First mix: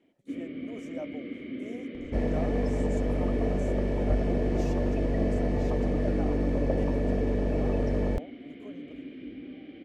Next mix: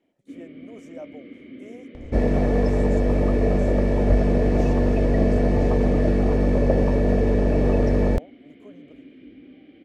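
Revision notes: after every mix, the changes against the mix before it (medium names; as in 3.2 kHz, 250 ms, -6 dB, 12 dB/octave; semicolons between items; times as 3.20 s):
first sound -4.0 dB; second sound +8.0 dB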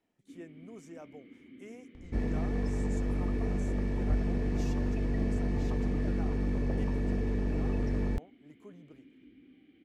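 first sound -10.0 dB; second sound -10.0 dB; master: add peaking EQ 580 Hz -13.5 dB 0.64 oct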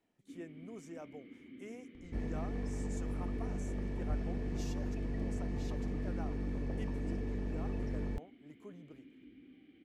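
second sound -7.0 dB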